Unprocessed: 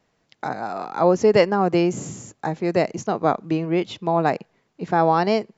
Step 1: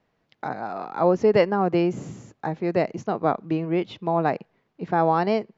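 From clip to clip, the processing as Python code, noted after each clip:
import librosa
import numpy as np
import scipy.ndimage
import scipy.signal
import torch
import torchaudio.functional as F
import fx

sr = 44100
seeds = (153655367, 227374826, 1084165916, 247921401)

y = fx.air_absorb(x, sr, metres=160.0)
y = F.gain(torch.from_numpy(y), -2.0).numpy()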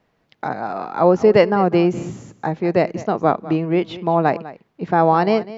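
y = x + 10.0 ** (-17.0 / 20.0) * np.pad(x, (int(200 * sr / 1000.0), 0))[:len(x)]
y = F.gain(torch.from_numpy(y), 5.5).numpy()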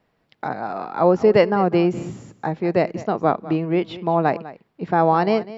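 y = fx.notch(x, sr, hz=6300.0, q=9.0)
y = F.gain(torch.from_numpy(y), -2.0).numpy()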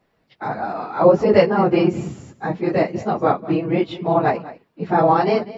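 y = fx.phase_scramble(x, sr, seeds[0], window_ms=50)
y = F.gain(torch.from_numpy(y), 1.5).numpy()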